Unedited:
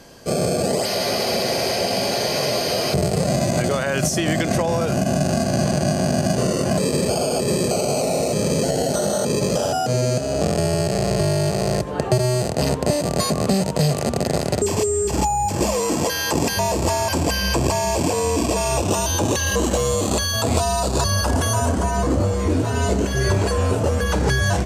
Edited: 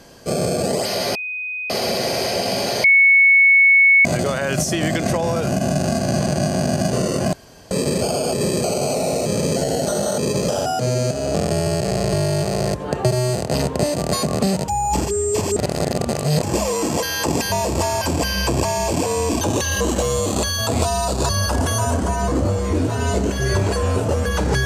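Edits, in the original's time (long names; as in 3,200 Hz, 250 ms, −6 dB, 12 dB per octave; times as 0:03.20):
0:01.15: insert tone 2,500 Hz −24 dBFS 0.55 s
0:02.29–0:03.50: beep over 2,210 Hz −8.5 dBFS
0:06.78: splice in room tone 0.38 s
0:13.75–0:15.50: reverse
0:18.48–0:19.16: remove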